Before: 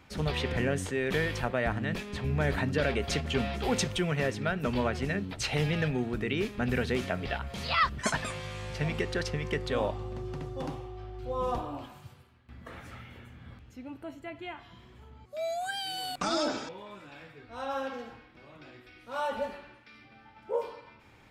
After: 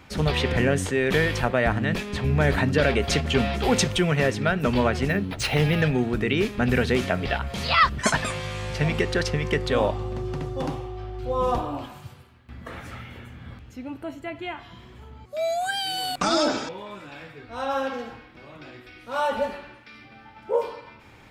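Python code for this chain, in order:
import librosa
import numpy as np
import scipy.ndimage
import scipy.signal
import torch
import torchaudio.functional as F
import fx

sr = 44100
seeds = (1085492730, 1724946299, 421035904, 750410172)

y = fx.resample_linear(x, sr, factor=3, at=(5.08, 5.82))
y = y * 10.0 ** (7.5 / 20.0)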